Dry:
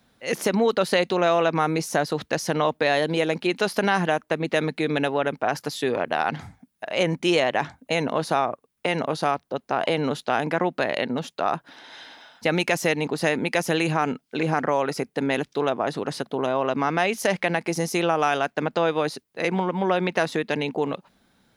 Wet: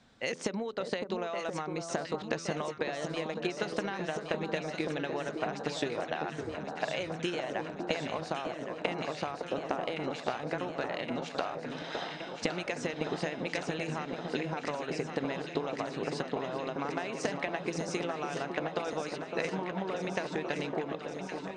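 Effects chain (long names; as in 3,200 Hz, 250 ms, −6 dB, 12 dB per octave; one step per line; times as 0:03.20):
Butterworth low-pass 8,900 Hz 96 dB per octave
hum removal 84.01 Hz, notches 7
downward compressor 16 to 1, threshold −33 dBFS, peak gain reduction 18 dB
transient designer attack +5 dB, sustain −1 dB
on a send: delay that swaps between a low-pass and a high-pass 559 ms, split 1,300 Hz, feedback 86%, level −6 dB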